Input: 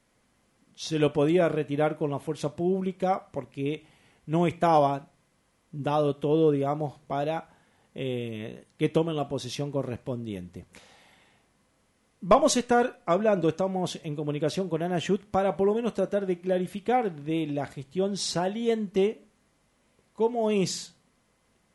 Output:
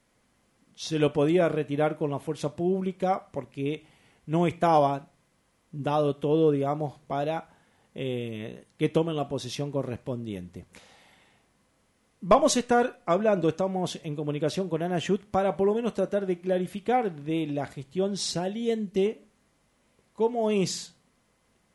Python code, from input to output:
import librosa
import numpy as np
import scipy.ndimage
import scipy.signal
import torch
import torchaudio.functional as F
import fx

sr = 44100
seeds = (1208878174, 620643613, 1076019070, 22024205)

y = fx.peak_eq(x, sr, hz=1100.0, db=-8.5, octaves=1.3, at=(18.31, 19.06))